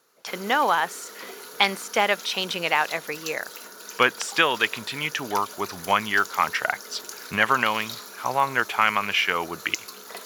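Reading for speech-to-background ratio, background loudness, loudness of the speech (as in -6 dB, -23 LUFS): 14.5 dB, -38.5 LUFS, -24.0 LUFS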